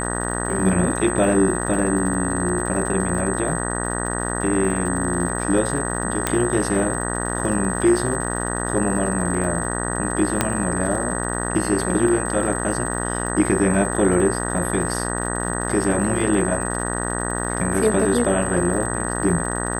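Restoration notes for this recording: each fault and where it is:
buzz 60 Hz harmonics 32 -26 dBFS
crackle 120/s -31 dBFS
tone 8200 Hz -28 dBFS
6.27 pop -4 dBFS
10.41 pop -2 dBFS

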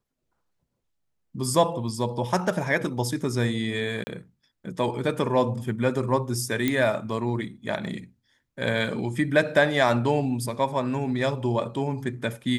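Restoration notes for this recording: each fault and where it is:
4.04–4.07 gap 30 ms
6.68 pop -10 dBFS

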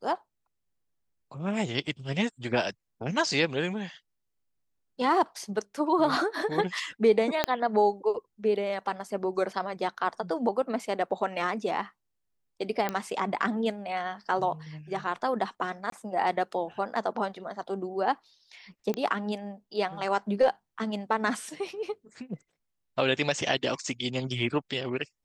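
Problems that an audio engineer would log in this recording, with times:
7.44 pop -8 dBFS
12.89 pop -14 dBFS
15.9–15.92 gap 23 ms
18.94 pop -17 dBFS

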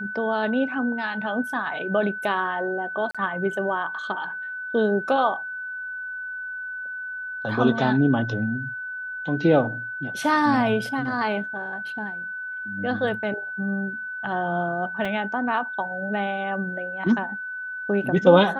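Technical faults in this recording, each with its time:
tone 1500 Hz -30 dBFS
3.11–3.15 gap 36 ms
15.05 gap 3.6 ms

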